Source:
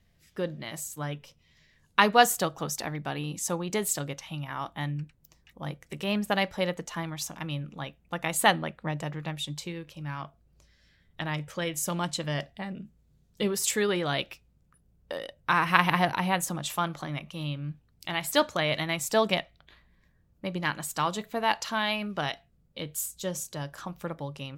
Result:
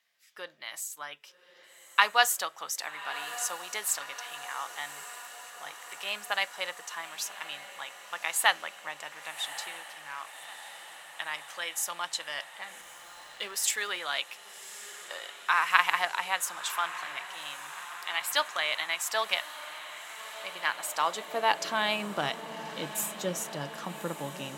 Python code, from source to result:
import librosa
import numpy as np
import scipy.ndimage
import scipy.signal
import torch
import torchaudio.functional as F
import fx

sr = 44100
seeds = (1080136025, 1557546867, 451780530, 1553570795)

y = fx.echo_diffused(x, sr, ms=1167, feedback_pct=70, wet_db=-13.5)
y = fx.filter_sweep_highpass(y, sr, from_hz=1100.0, to_hz=200.0, start_s=20.4, end_s=22.29, q=0.87)
y = fx.backlash(y, sr, play_db=-47.5, at=(12.81, 13.99))